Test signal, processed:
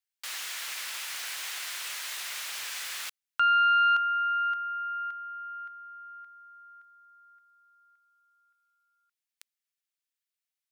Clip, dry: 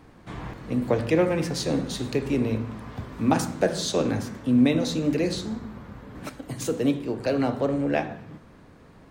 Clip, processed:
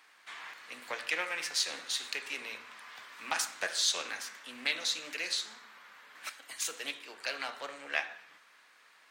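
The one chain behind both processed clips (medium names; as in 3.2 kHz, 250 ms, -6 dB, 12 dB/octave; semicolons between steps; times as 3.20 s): Chebyshev high-pass 1.9 kHz, order 2; loudspeaker Doppler distortion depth 0.14 ms; trim +2.5 dB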